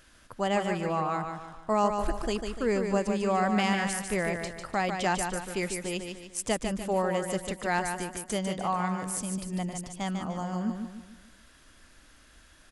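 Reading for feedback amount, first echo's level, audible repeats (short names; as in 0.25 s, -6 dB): 42%, -6.0 dB, 4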